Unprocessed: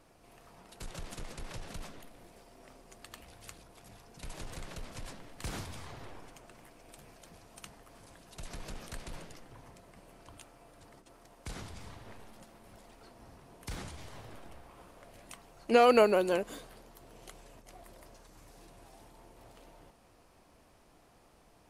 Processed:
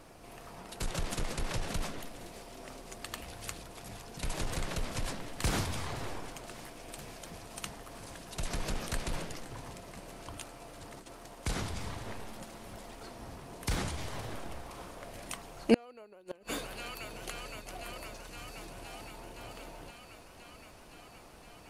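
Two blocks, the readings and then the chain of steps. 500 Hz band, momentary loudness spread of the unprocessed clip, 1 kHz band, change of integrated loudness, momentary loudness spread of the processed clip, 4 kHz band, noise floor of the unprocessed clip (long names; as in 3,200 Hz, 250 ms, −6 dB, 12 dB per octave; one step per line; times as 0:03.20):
−7.0 dB, 26 LU, −5.0 dB, −7.0 dB, 14 LU, +4.0 dB, −63 dBFS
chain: delay with a high-pass on its return 517 ms, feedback 81%, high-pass 2,100 Hz, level −16 dB
gate with flip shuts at −19 dBFS, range −38 dB
level +8.5 dB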